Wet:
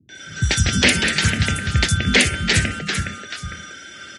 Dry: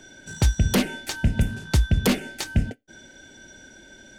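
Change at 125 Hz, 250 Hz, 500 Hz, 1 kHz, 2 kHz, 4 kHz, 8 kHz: +3.0, +2.5, +3.5, +7.5, +14.0, +13.0, +10.5 dB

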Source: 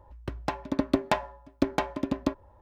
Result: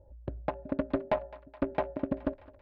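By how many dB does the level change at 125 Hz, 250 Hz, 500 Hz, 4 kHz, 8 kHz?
-3.5 dB, -5.0 dB, -0.5 dB, -14.5 dB, under -30 dB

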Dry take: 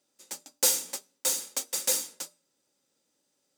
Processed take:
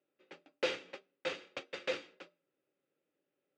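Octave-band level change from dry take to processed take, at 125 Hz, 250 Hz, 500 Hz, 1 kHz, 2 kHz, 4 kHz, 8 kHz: n/a, -0.5 dB, +0.5 dB, -4.0 dB, +1.0 dB, -10.5 dB, -32.0 dB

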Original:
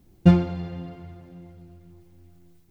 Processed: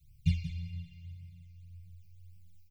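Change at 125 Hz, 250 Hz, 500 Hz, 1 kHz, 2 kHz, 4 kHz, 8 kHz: -11.0 dB, -19.5 dB, under -40 dB, under -40 dB, -11.5 dB, -7.0 dB, n/a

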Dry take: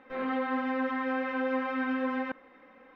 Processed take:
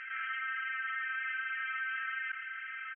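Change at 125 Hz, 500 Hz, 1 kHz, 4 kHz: n/a, under -40 dB, -8.0 dB, +1.0 dB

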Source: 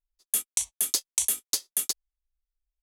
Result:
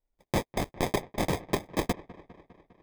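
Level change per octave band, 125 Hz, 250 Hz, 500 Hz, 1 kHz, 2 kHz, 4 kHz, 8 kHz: n/a, +21.5 dB, +20.0 dB, +18.0 dB, +8.5 dB, -6.5 dB, -18.0 dB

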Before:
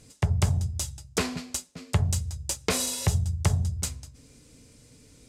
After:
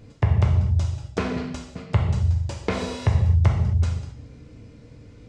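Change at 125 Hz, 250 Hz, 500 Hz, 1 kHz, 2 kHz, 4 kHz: +6.5, +5.0, +4.0, +4.0, +1.0, -5.5 dB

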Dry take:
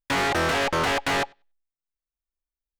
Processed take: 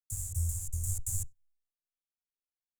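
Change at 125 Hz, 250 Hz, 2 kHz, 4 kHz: +1.0 dB, -29.5 dB, under -40 dB, -32.0 dB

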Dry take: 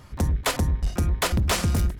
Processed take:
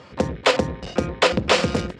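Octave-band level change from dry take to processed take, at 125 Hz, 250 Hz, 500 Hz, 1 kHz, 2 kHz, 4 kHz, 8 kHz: -5.5, +4.0, +11.5, +6.5, +7.0, +6.5, -3.0 dB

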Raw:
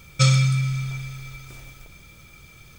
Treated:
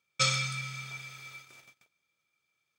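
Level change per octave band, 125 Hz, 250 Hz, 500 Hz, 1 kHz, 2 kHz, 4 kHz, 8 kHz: -19.5, -19.0, -7.0, -3.5, -3.0, -3.0, -4.5 dB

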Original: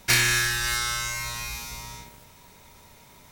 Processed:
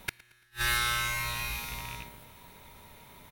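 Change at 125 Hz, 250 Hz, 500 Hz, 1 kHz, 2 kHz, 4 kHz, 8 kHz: -7.0, -8.0, -6.5, -2.0, -6.5, -7.0, -11.0 dB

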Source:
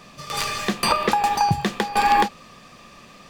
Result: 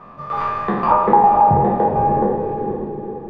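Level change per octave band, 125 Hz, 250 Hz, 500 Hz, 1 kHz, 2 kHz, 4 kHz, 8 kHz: +6.5 dB, +6.5 dB, +10.5 dB, +6.0 dB, -7.5 dB, under -20 dB, under -30 dB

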